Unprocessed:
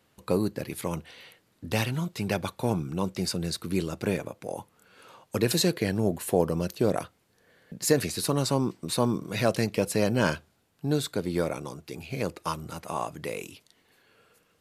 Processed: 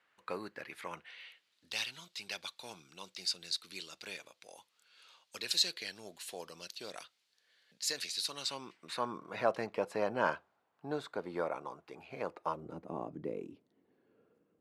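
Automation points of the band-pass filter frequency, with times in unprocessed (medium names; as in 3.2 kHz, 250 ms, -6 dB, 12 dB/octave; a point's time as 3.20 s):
band-pass filter, Q 1.5
0.95 s 1.7 kHz
1.65 s 4.1 kHz
8.31 s 4.1 kHz
9.36 s 960 Hz
12.33 s 960 Hz
12.82 s 290 Hz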